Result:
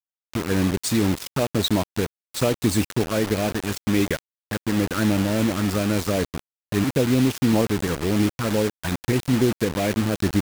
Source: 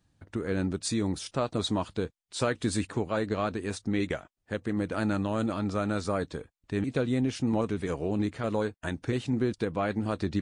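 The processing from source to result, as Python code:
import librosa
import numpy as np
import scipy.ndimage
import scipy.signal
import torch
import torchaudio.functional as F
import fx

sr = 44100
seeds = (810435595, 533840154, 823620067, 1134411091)

y = fx.env_flanger(x, sr, rest_ms=2.4, full_db=-23.0)
y = fx.quant_dither(y, sr, seeds[0], bits=6, dither='none')
y = F.gain(torch.from_numpy(y), 8.5).numpy()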